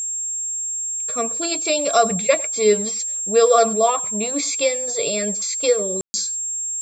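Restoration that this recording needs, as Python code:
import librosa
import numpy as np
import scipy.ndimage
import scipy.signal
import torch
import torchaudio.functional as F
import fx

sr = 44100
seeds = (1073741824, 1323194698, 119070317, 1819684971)

y = fx.notch(x, sr, hz=7500.0, q=30.0)
y = fx.fix_ambience(y, sr, seeds[0], print_start_s=0.5, print_end_s=1.0, start_s=6.01, end_s=6.14)
y = fx.fix_echo_inverse(y, sr, delay_ms=100, level_db=-22.5)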